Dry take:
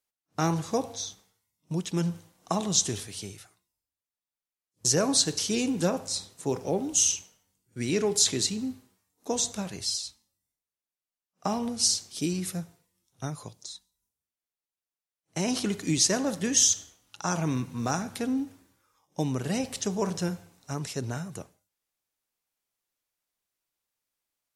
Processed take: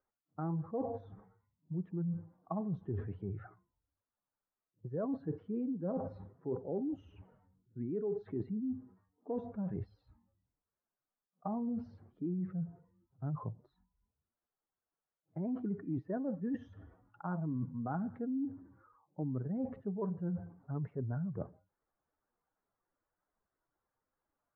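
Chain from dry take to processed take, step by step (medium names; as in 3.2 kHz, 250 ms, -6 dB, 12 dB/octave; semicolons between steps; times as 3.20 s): spectral contrast enhancement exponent 1.7; steep low-pass 1.6 kHz 36 dB/octave; reverse; compression 5:1, threshold -42 dBFS, peak gain reduction 19 dB; reverse; trim +6 dB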